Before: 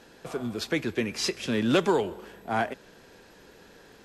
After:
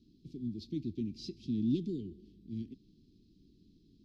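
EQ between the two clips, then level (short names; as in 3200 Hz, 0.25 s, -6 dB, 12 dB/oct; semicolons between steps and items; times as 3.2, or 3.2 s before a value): Chebyshev band-stop 320–4400 Hz, order 3; Butterworth band-stop 660 Hz, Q 0.65; air absorption 320 m; -3.0 dB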